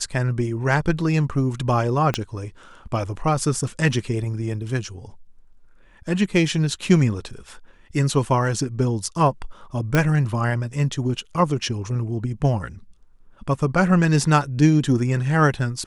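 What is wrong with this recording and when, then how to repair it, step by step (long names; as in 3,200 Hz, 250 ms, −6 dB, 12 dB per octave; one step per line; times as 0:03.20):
0:02.14: click −8 dBFS
0:09.95: click −6 dBFS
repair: click removal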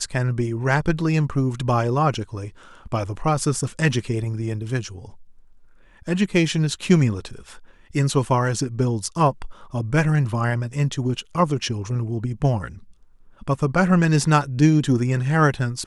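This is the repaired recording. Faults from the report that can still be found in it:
0:02.14: click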